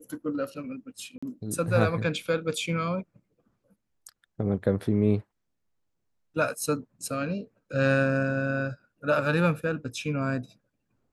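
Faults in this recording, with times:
1.18–1.23 s: dropout 45 ms

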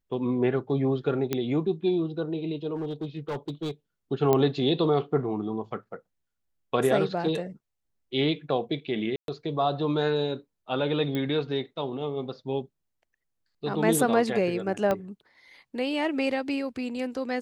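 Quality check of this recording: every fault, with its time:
1.33 s: pop -12 dBFS
2.75–3.71 s: clipped -27.5 dBFS
4.33 s: pop -10 dBFS
9.16–9.28 s: dropout 122 ms
11.15 s: pop -18 dBFS
14.91 s: pop -14 dBFS

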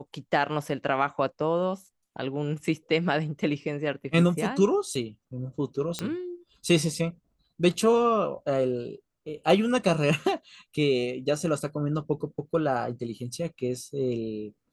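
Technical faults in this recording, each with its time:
5.99 s: pop -15 dBFS

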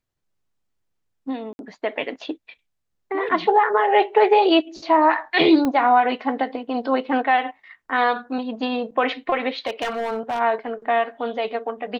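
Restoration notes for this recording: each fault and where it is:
1.53–1.59 s: dropout 61 ms
5.65 s: pop -11 dBFS
9.66–10.40 s: clipped -20.5 dBFS

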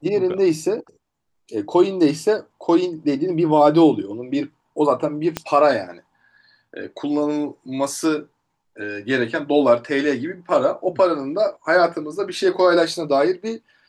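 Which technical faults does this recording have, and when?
5.37 s: pop -8 dBFS

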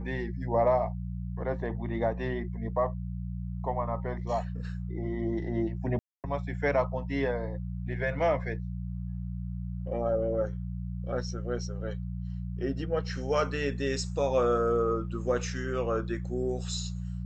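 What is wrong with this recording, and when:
hum 60 Hz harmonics 3 -35 dBFS
5.99–6.24 s: dropout 248 ms

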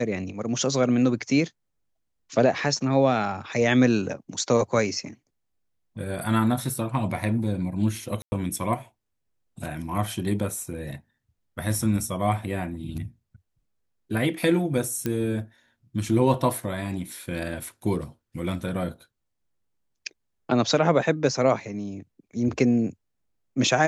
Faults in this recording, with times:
8.22–8.32 s: dropout 100 ms
15.06 s: pop -13 dBFS

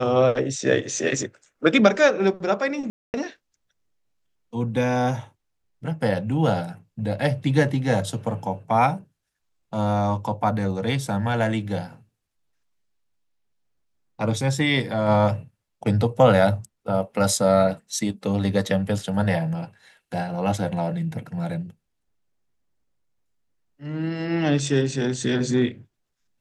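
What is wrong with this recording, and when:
2.90–3.14 s: dropout 239 ms

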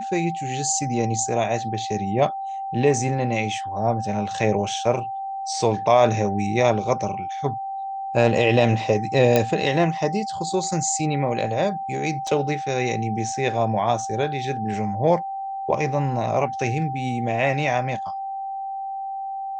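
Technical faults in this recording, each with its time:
whine 780 Hz -27 dBFS
9.36 s: pop -4 dBFS
12.27 s: dropout 2.9 ms

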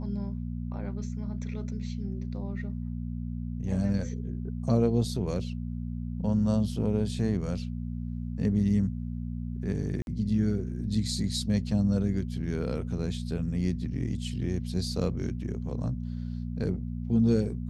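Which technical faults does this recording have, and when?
hum 60 Hz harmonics 4 -34 dBFS
10.02–10.07 s: dropout 51 ms

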